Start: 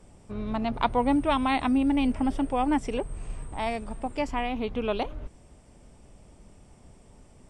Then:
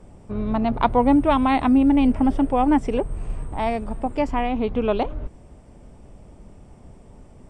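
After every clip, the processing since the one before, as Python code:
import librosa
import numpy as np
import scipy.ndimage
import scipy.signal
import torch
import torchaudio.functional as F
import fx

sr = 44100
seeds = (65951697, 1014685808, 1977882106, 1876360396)

y = fx.high_shelf(x, sr, hz=2000.0, db=-10.5)
y = y * 10.0 ** (7.5 / 20.0)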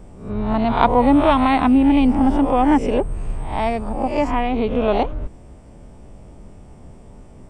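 y = fx.spec_swells(x, sr, rise_s=0.52)
y = y * 10.0 ** (2.0 / 20.0)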